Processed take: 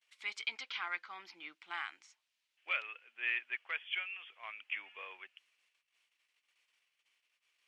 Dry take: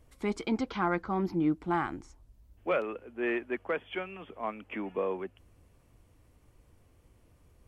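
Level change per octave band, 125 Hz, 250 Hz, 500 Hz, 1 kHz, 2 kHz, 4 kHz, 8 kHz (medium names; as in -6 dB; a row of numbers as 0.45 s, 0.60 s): under -40 dB, under -35 dB, -26.5 dB, -12.5 dB, +1.0 dB, +5.0 dB, no reading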